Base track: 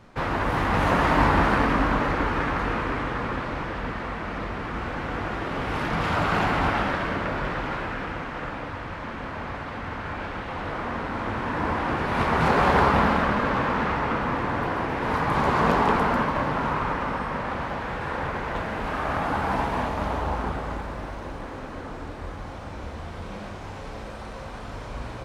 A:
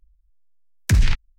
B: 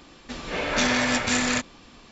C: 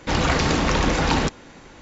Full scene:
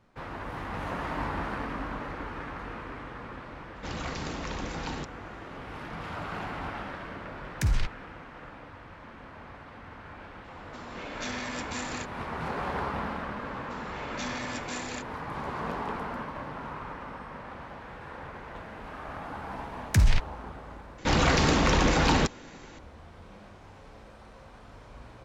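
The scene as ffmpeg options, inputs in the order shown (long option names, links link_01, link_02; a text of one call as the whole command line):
ffmpeg -i bed.wav -i cue0.wav -i cue1.wav -i cue2.wav -filter_complex "[3:a]asplit=2[link_01][link_02];[1:a]asplit=2[link_03][link_04];[2:a]asplit=2[link_05][link_06];[0:a]volume=-13dB[link_07];[link_02]acontrast=85[link_08];[link_07]asplit=2[link_09][link_10];[link_09]atrim=end=20.984[link_11];[link_08]atrim=end=1.81,asetpts=PTS-STARTPTS,volume=-9dB[link_12];[link_10]atrim=start=22.786[link_13];[link_01]atrim=end=1.81,asetpts=PTS-STARTPTS,volume=-15.5dB,afade=type=in:duration=0.004:curve=hsin,afade=type=out:start_time=1.806:duration=0.004:curve=hsin,adelay=3760[link_14];[link_03]atrim=end=1.38,asetpts=PTS-STARTPTS,volume=-9.5dB,afade=type=in:duration=0.004:curve=hsin,afade=type=out:start_time=1.376:duration=0.004:curve=hsin,adelay=6720[link_15];[link_05]atrim=end=2.11,asetpts=PTS-STARTPTS,volume=-13.5dB,afade=type=in:duration=0.004:curve=hsin,afade=type=out:start_time=2.106:duration=0.004:curve=hsin,adelay=10440[link_16];[link_06]atrim=end=2.11,asetpts=PTS-STARTPTS,volume=-14dB,afade=type=in:duration=0.004:curve=hsin,afade=type=out:start_time=2.106:duration=0.004:curve=hsin,adelay=13410[link_17];[link_04]atrim=end=1.38,asetpts=PTS-STARTPTS,volume=-4.5dB,afade=type=in:duration=0.004:curve=hsin,afade=type=out:start_time=1.376:duration=0.004:curve=hsin,adelay=19050[link_18];[link_11][link_12]acrossfade=duration=0.004:curve1=hsin:curve2=hsin[link_19];[link_19][link_13]acrossfade=duration=0.004:curve1=hsin:curve2=hsin[link_20];[link_20][link_14][link_15][link_16][link_17][link_18]amix=inputs=6:normalize=0" out.wav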